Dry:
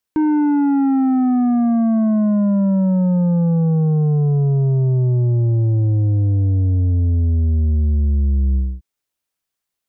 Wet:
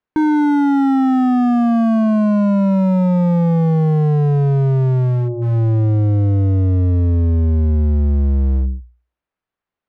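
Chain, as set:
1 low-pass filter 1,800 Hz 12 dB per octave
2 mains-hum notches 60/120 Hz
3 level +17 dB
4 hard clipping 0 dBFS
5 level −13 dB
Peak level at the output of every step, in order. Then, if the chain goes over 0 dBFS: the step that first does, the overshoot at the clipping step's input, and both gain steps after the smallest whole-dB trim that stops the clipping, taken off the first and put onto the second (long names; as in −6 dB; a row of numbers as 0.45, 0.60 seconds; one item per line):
−14.0, −12.0, +5.0, 0.0, −13.0 dBFS
step 3, 5.0 dB
step 3 +12 dB, step 5 −8 dB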